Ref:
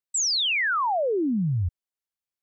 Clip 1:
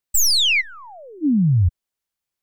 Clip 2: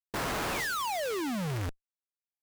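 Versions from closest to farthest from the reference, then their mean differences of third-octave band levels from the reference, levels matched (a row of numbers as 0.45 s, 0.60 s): 1, 2; 4.0 dB, 35.5 dB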